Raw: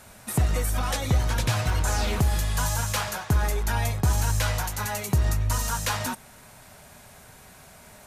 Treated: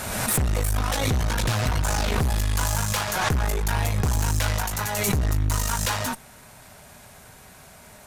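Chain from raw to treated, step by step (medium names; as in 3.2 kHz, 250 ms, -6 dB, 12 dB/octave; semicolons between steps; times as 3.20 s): valve stage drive 26 dB, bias 0.8; swell ahead of each attack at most 33 dB/s; trim +6.5 dB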